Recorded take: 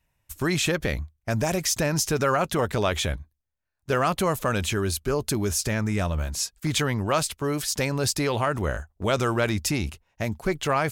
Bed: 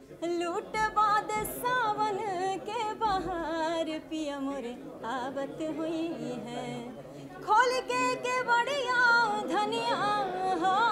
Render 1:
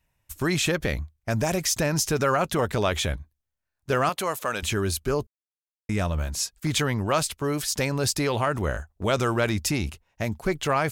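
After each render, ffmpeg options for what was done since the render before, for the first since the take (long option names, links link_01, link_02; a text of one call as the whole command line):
ffmpeg -i in.wav -filter_complex "[0:a]asettb=1/sr,asplit=3[link_01][link_02][link_03];[link_01]atrim=end=4.094[link_04];[link_02]atrim=start=4.09:end=4.63,asetpts=PTS-STARTPTS,afade=type=in:duration=0.004:curve=qsin,afade=type=out:start_time=0.536:duration=0.004:curve=qsin,highpass=frequency=630:poles=1[link_05];[link_03]atrim=start=4.626[link_06];[link_04][link_05]acrossfade=duration=0.004:curve1=hsin:curve2=qsin[link_07];[link_07][link_06]acrossfade=duration=0.004:curve1=qsin:curve2=hsin,asplit=3[link_08][link_09][link_10];[link_08]atrim=end=5.27,asetpts=PTS-STARTPTS,afade=type=out:start_time=5.266:duration=0.004:curve=hsin[link_11];[link_09]atrim=start=5.27:end=5.89,asetpts=PTS-STARTPTS,volume=0[link_12];[link_10]atrim=start=5.89,asetpts=PTS-STARTPTS,afade=type=in:duration=0.004:curve=hsin[link_13];[link_11][link_12][link_13]concat=n=3:v=0:a=1" out.wav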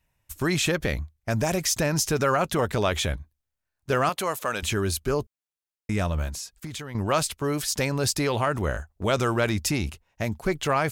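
ffmpeg -i in.wav -filter_complex "[0:a]asettb=1/sr,asplit=3[link_01][link_02][link_03];[link_01]atrim=end=6.294[link_04];[link_02]atrim=start=6.29:end=6.95,asetpts=PTS-STARTPTS,afade=type=in:duration=0.004:curve=qsin,afade=type=out:start_time=0.656:duration=0.004:curve=qsin,acompressor=threshold=-31dB:ratio=16:attack=3.2:release=140:knee=1:detection=peak[link_05];[link_03]atrim=start=6.946[link_06];[link_04][link_05]acrossfade=duration=0.004:curve1=hsin:curve2=qsin[link_07];[link_07][link_06]acrossfade=duration=0.004:curve1=qsin:curve2=hsin" out.wav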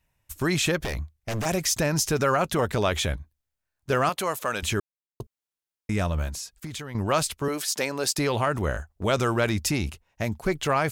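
ffmpeg -i in.wav -filter_complex "[0:a]asettb=1/sr,asplit=3[link_01][link_02][link_03];[link_01]atrim=end=0.794[link_04];[link_02]atrim=start=0.79:end=1.46,asetpts=PTS-STARTPTS,afade=type=in:duration=0.004:curve=qsin,afade=type=out:start_time=0.666:duration=0.004:curve=qsin,aeval=exprs='0.0708*(abs(mod(val(0)/0.0708+3,4)-2)-1)':channel_layout=same[link_05];[link_03]atrim=start=1.456[link_06];[link_04][link_05]acrossfade=duration=0.004:curve1=hsin:curve2=qsin[link_07];[link_07][link_06]acrossfade=duration=0.004:curve1=qsin:curve2=hsin,asettb=1/sr,asplit=3[link_08][link_09][link_10];[link_08]atrim=end=7.484[link_11];[link_09]atrim=start=7.48:end=8.18,asetpts=PTS-STARTPTS,afade=type=in:duration=0.004:curve=qsin,afade=type=out:start_time=0.696:duration=0.004:curve=qsin,highpass=300[link_12];[link_10]atrim=start=8.176[link_13];[link_11][link_12]acrossfade=duration=0.004:curve1=hsin:curve2=qsin[link_14];[link_14][link_13]acrossfade=duration=0.004:curve1=qsin:curve2=hsin,asplit=3[link_15][link_16][link_17];[link_15]atrim=end=4.8,asetpts=PTS-STARTPTS,afade=type=out:start_time=4.796:duration=0.004:curve=hsin[link_18];[link_16]atrim=start=4.8:end=5.2,asetpts=PTS-STARTPTS,volume=0[link_19];[link_17]atrim=start=5.2,asetpts=PTS-STARTPTS,afade=type=in:duration=0.004:curve=hsin[link_20];[link_18][link_19][link_20]concat=n=3:v=0:a=1" out.wav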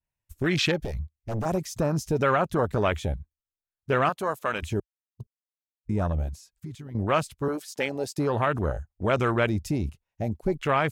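ffmpeg -i in.wav -af "afwtdn=0.0398,adynamicequalizer=threshold=0.0141:dfrequency=2000:dqfactor=0.7:tfrequency=2000:tqfactor=0.7:attack=5:release=100:ratio=0.375:range=1.5:mode=boostabove:tftype=highshelf" out.wav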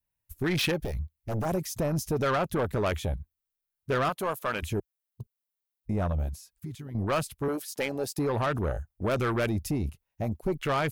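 ffmpeg -i in.wav -af "asoftclip=type=tanh:threshold=-21dB,aexciter=amount=2.4:drive=5.9:freq=9900" out.wav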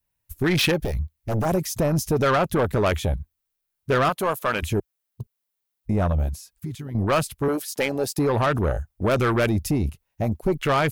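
ffmpeg -i in.wav -af "volume=6.5dB" out.wav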